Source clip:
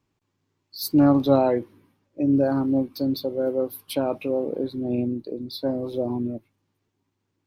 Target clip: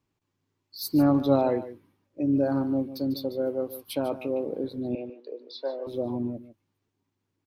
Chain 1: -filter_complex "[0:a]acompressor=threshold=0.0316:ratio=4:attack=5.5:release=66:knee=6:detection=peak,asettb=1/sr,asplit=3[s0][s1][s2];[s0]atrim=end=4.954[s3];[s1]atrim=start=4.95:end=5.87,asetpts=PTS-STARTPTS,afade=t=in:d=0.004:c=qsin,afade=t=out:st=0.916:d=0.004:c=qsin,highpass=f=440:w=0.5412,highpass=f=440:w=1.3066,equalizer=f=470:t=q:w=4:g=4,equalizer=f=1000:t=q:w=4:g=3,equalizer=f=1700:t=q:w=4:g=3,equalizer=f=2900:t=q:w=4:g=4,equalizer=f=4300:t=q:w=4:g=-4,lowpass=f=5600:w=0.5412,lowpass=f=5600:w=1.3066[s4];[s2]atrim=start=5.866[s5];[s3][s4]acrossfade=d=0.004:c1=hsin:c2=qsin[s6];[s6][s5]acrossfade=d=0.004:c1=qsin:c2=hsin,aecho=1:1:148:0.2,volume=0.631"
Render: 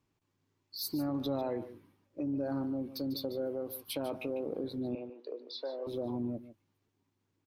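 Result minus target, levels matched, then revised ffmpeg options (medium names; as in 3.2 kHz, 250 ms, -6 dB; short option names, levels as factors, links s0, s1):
compression: peak gain reduction +15 dB
-filter_complex "[0:a]asettb=1/sr,asplit=3[s0][s1][s2];[s0]atrim=end=4.954[s3];[s1]atrim=start=4.95:end=5.87,asetpts=PTS-STARTPTS,afade=t=in:d=0.004:c=qsin,afade=t=out:st=0.916:d=0.004:c=qsin,highpass=f=440:w=0.5412,highpass=f=440:w=1.3066,equalizer=f=470:t=q:w=4:g=4,equalizer=f=1000:t=q:w=4:g=3,equalizer=f=1700:t=q:w=4:g=3,equalizer=f=2900:t=q:w=4:g=4,equalizer=f=4300:t=q:w=4:g=-4,lowpass=f=5600:w=0.5412,lowpass=f=5600:w=1.3066[s4];[s2]atrim=start=5.866[s5];[s3][s4]acrossfade=d=0.004:c1=hsin:c2=qsin[s6];[s6][s5]acrossfade=d=0.004:c1=qsin:c2=hsin,aecho=1:1:148:0.2,volume=0.631"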